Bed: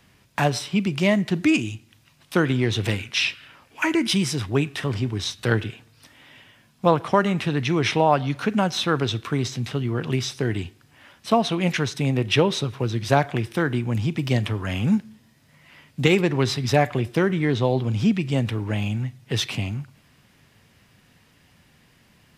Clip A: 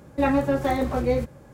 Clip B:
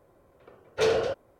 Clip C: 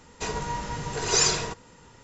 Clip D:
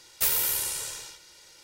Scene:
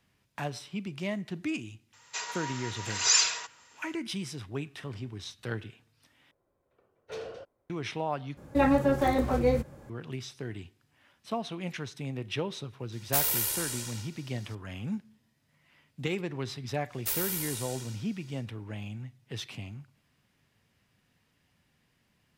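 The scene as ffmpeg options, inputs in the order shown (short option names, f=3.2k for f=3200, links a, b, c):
-filter_complex "[4:a]asplit=2[a][b];[0:a]volume=-14dB[c];[3:a]highpass=1.3k[d];[c]asplit=3[e][f][g];[e]atrim=end=6.314[h];[2:a]atrim=end=1.39,asetpts=PTS-STARTPTS,volume=-16dB[i];[f]atrim=start=7.696:end=8.374[j];[1:a]atrim=end=1.53,asetpts=PTS-STARTPTS,volume=-2dB[k];[g]atrim=start=9.896[l];[d]atrim=end=2.03,asetpts=PTS-STARTPTS,volume=-0.5dB,afade=t=in:d=0.004:c=hsin,afade=t=out:st=2.026:d=0.004:c=hsin,adelay=1930[m];[a]atrim=end=1.63,asetpts=PTS-STARTPTS,volume=-2.5dB,afade=t=in:d=0.004:c=hsin,afade=t=out:st=1.626:d=0.004:c=hsin,adelay=12920[n];[b]atrim=end=1.63,asetpts=PTS-STARTPTS,volume=-7dB,afade=t=in:d=0.1,afade=t=out:st=1.53:d=0.1,adelay=16850[o];[h][i]acrossfade=d=0.004:c1=hsin:c2=hsin[p];[p][j]acrossfade=d=0.004:c1=hsin:c2=hsin[q];[q][k]acrossfade=d=0.004:c1=hsin:c2=hsin[r];[r][l]acrossfade=d=0.004:c1=hsin:c2=hsin[s];[s][m][n][o]amix=inputs=4:normalize=0"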